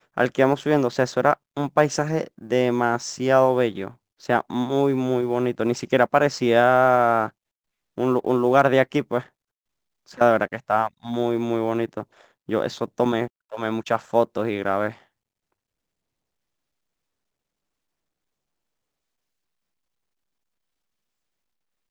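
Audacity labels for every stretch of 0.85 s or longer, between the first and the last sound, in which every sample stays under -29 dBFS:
9.210000	10.180000	silence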